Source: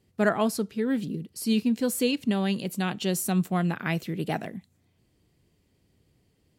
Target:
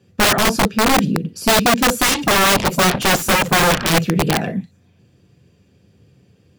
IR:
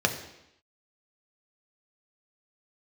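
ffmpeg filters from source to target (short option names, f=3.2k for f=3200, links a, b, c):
-filter_complex "[1:a]atrim=start_sample=2205,atrim=end_sample=3087[a];[0:a][a]afir=irnorm=-1:irlink=0,aeval=exprs='(mod(2.66*val(0)+1,2)-1)/2.66':c=same,asettb=1/sr,asplit=3[b][c][d];[b]atrim=end=2.034[e];[c]atrim=start=2.03:end=3.9,asetpts=PTS-STARTPTS,afade=t=in:d=0.004:c=qsin,afade=t=out:st=1.866:d=0.004:c=qsin,aeval=exprs='0.398*(cos(1*acos(clip(val(0)/0.398,-1,1)))-cos(1*PI/2))+0.0891*(cos(3*acos(clip(val(0)/0.398,-1,1)))-cos(3*PI/2))+0.112*(cos(7*acos(clip(val(0)/0.398,-1,1)))-cos(7*PI/2))':c=same[f];[d]atrim=start=3.896[g];[e][f]acrossfade=d=0.004:c1=hsin:c2=qsin[h];[h][g]acrossfade=d=0.004:c1=qsin:c2=hsin"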